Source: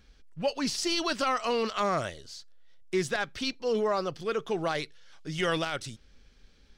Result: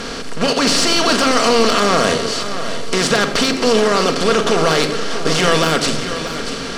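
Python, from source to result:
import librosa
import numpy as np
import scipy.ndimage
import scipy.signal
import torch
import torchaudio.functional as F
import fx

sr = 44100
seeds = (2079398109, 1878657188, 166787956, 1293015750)

p1 = fx.bin_compress(x, sr, power=0.4)
p2 = scipy.signal.sosfilt(scipy.signal.butter(2, 11000.0, 'lowpass', fs=sr, output='sos'), p1)
p3 = fx.high_shelf(p2, sr, hz=6600.0, db=6.5)
p4 = fx.level_steps(p3, sr, step_db=14)
p5 = p3 + (p4 * 10.0 ** (2.0 / 20.0))
p6 = fx.fold_sine(p5, sr, drive_db=5, ceiling_db=-2.0)
p7 = p6 + fx.echo_feedback(p6, sr, ms=638, feedback_pct=33, wet_db=-11, dry=0)
p8 = fx.room_shoebox(p7, sr, seeds[0], volume_m3=3200.0, walls='furnished', distance_m=1.7)
y = p8 * 10.0 ** (-5.5 / 20.0)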